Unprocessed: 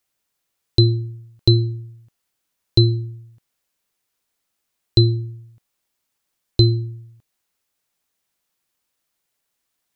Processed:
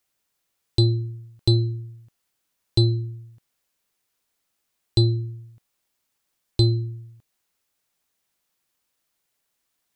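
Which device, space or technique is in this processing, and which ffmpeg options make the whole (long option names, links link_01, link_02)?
soft clipper into limiter: -af "asoftclip=type=tanh:threshold=-6dB,alimiter=limit=-10dB:level=0:latency=1:release=472"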